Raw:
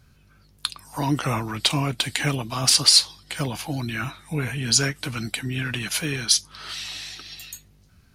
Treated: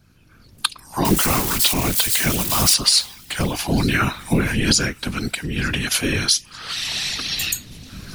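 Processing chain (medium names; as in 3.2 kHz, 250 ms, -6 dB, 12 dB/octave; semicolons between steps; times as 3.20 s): 1.05–2.74 s: zero-crossing glitches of -14 dBFS; recorder AGC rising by 16 dB/s; whisper effect; feedback echo behind a high-pass 900 ms, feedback 44%, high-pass 2 kHz, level -22 dB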